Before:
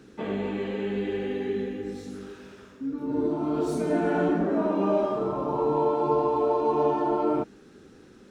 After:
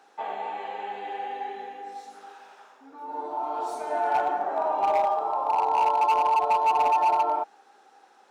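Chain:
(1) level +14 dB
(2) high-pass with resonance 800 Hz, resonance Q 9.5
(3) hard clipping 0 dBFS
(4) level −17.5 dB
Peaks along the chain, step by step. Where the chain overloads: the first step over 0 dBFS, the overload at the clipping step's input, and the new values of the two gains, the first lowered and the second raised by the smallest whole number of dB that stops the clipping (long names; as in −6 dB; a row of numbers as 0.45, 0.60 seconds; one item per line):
+2.0, +7.5, 0.0, −17.5 dBFS
step 1, 7.5 dB
step 1 +6 dB, step 4 −9.5 dB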